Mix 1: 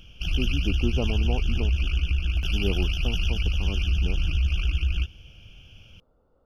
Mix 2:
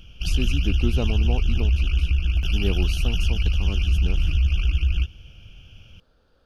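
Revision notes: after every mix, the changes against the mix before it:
speech: remove Savitzky-Golay smoothing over 65 samples
master: add low-shelf EQ 190 Hz +4 dB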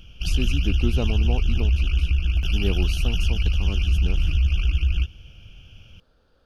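nothing changed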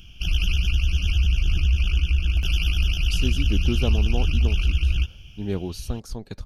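speech: entry +2.85 s
background: add high-shelf EQ 4,200 Hz +7.5 dB

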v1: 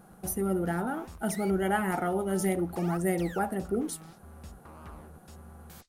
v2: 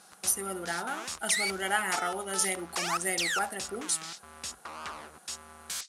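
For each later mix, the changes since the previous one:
background +10.0 dB
master: add meter weighting curve ITU-R 468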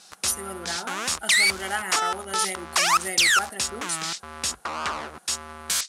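background +11.5 dB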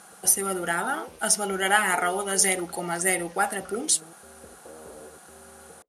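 speech +7.5 dB
background: add transistor ladder low-pass 530 Hz, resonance 65%

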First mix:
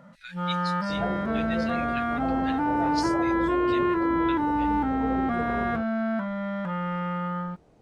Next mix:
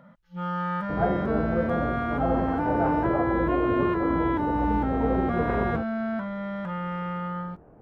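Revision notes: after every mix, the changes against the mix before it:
speech: muted
second sound +6.5 dB
reverb: off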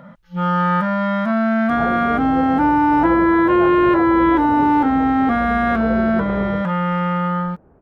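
first sound +11.5 dB
second sound: entry +0.80 s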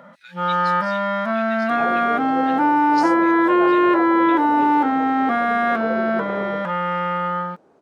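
speech: unmuted
master: add high-pass filter 310 Hz 12 dB per octave

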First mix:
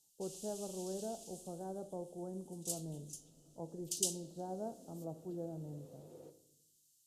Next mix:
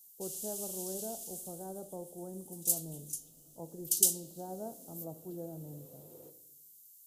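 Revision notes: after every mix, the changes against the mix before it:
master: remove high-frequency loss of the air 80 metres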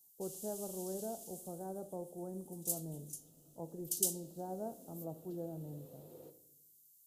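first sound −7.5 dB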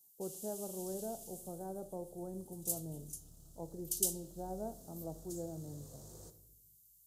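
second sound: remove loudspeaker in its box 250–3,300 Hz, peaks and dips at 280 Hz +10 dB, 500 Hz +7 dB, 1,100 Hz −7 dB, 1,600 Hz −6 dB, 2,600 Hz +4 dB

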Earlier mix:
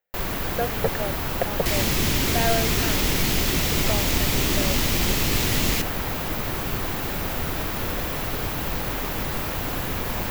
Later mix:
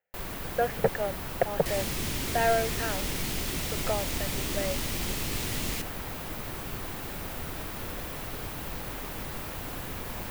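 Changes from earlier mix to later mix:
first sound −9.5 dB
second sound −10.0 dB
master: add parametric band 9,200 Hz +9.5 dB 0.22 octaves

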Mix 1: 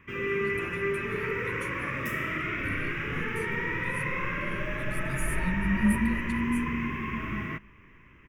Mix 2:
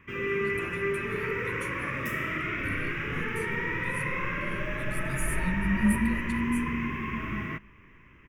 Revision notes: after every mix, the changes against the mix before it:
speech: send +10.5 dB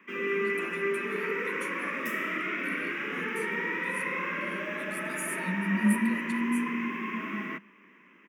master: add Butterworth high-pass 180 Hz 72 dB per octave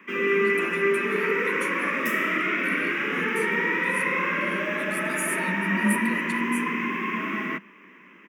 speech +6.0 dB
first sound +7.0 dB

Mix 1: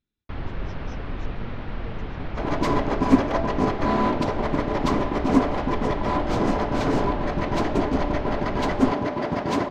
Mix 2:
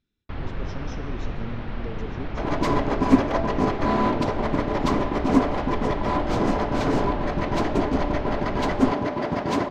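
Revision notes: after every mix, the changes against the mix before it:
speech +5.0 dB
reverb: on, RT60 2.7 s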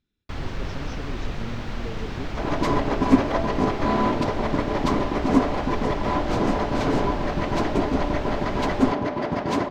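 first sound: remove high-frequency loss of the air 300 metres

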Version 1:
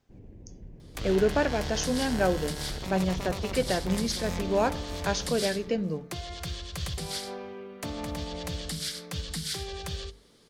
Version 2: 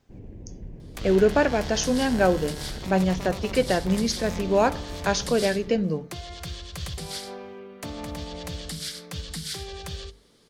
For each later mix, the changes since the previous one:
speech +5.0 dB
first sound +6.5 dB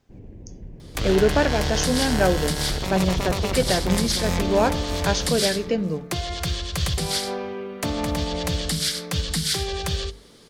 second sound +9.5 dB

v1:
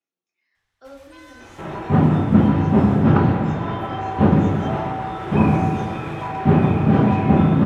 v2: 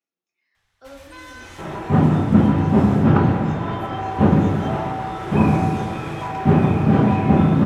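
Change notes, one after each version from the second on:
first sound +6.5 dB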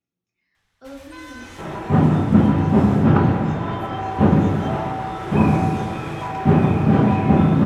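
speech: remove high-pass filter 420 Hz 12 dB per octave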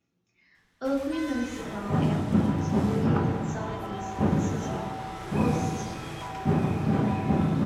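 speech +10.5 dB
second sound −9.5 dB

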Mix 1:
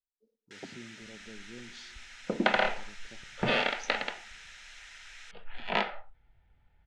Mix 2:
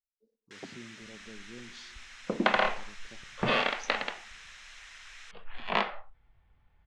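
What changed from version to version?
master: remove Butterworth band-reject 1,100 Hz, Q 5.7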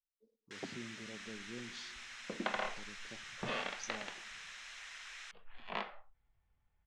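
second sound −12.0 dB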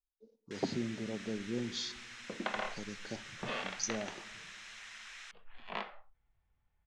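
speech +11.0 dB

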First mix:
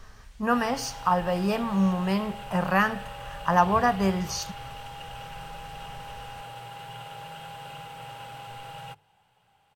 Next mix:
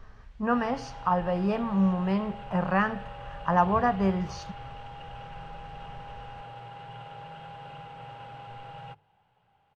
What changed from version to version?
master: add head-to-tape spacing loss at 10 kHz 25 dB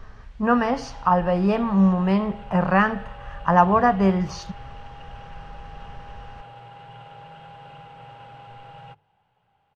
speech +6.5 dB

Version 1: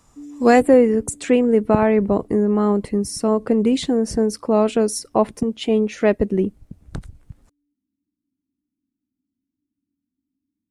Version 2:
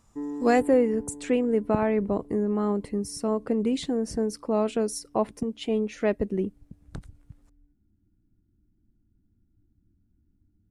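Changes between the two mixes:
speech −8.0 dB
background: remove formant filter i

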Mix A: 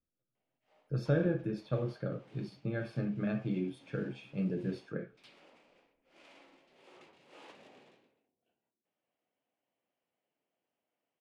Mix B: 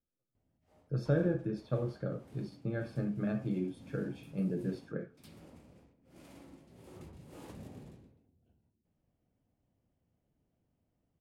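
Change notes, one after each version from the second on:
background: remove band-pass filter 530–4,900 Hz
master: add parametric band 2,700 Hz −6.5 dB 1.1 octaves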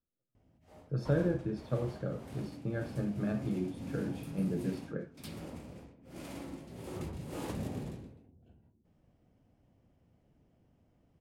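background +10.5 dB

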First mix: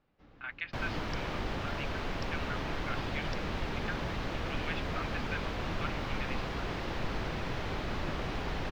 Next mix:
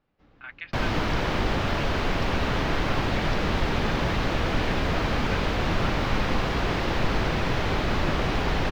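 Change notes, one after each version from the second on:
second sound +10.5 dB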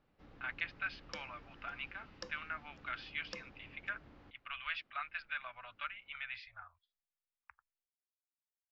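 second sound: muted

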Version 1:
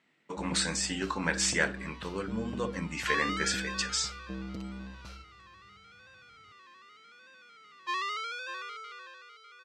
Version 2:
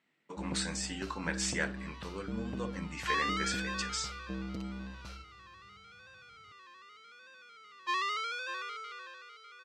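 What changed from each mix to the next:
speech −6.0 dB
second sound: send +6.5 dB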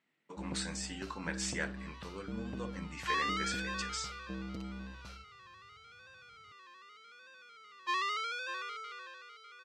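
speech −3.5 dB
reverb: off

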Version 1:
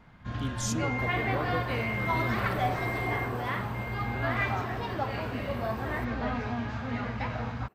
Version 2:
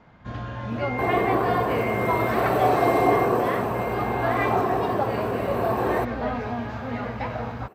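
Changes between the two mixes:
speech: muted
second sound +10.0 dB
master: add parametric band 550 Hz +7.5 dB 1.8 octaves

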